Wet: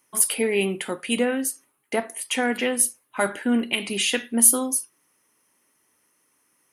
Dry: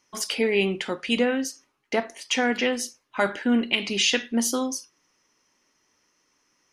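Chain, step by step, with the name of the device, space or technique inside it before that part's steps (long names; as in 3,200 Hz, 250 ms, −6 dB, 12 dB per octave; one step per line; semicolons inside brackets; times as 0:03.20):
budget condenser microphone (high-pass filter 77 Hz; high shelf with overshoot 7,600 Hz +12 dB, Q 3)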